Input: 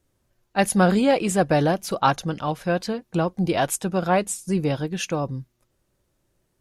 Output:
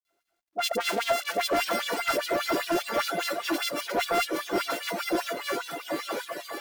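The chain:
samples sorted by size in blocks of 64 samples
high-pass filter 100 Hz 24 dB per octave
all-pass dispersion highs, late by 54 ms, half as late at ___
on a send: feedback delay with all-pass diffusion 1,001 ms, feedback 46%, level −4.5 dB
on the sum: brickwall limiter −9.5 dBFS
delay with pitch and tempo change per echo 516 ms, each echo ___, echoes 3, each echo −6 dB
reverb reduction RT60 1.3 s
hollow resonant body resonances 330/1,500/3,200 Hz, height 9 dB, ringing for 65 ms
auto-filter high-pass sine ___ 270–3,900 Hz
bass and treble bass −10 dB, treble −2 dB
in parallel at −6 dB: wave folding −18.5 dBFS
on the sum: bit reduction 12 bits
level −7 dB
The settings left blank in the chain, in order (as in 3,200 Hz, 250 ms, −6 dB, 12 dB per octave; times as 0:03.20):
1,200 Hz, −3 semitones, 5 Hz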